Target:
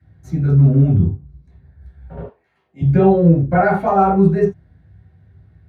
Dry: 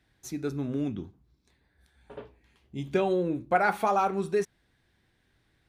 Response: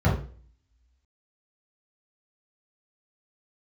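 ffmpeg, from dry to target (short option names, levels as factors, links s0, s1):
-filter_complex "[0:a]asettb=1/sr,asplit=3[s0][s1][s2];[s0]atrim=end=2.214[s3];[s1]atrim=start=2.21:end=2.81,asetpts=PTS-STARTPTS,afade=t=in:d=0.004:c=qsin,afade=t=out:st=0.596:d=0.004:c=qsin,highpass=630[s4];[s2]atrim=start=2.806[s5];[s3][s4]acrossfade=d=0.004:c1=hsin:c2=qsin[s6];[s6][s5]acrossfade=d=0.004:c1=qsin:c2=hsin[s7];[1:a]atrim=start_sample=2205,atrim=end_sample=3969[s8];[s7][s8]afir=irnorm=-1:irlink=0,volume=0.422"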